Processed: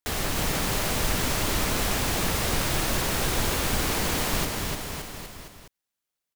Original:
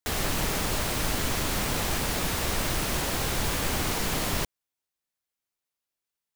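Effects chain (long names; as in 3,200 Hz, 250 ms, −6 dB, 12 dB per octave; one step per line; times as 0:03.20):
log-companded quantiser 8 bits
bouncing-ball delay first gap 300 ms, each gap 0.9×, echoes 5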